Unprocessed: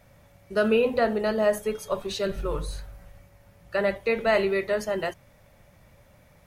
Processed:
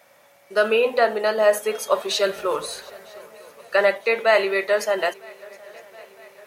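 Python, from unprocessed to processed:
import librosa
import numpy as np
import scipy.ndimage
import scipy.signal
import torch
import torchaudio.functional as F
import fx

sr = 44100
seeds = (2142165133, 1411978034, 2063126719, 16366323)

p1 = scipy.signal.sosfilt(scipy.signal.butter(2, 510.0, 'highpass', fs=sr, output='sos'), x)
p2 = fx.rider(p1, sr, range_db=10, speed_s=0.5)
p3 = p1 + (p2 * 10.0 ** (-0.5 / 20.0))
p4 = fx.echo_swing(p3, sr, ms=956, ratio=3, feedback_pct=55, wet_db=-24.0)
y = p4 * 10.0 ** (2.0 / 20.0)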